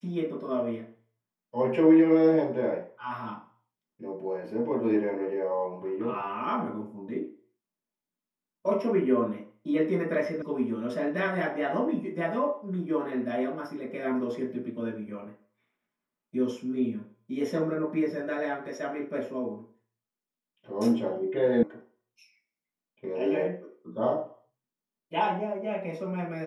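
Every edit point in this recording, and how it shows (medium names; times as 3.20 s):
10.42 s: sound stops dead
21.63 s: sound stops dead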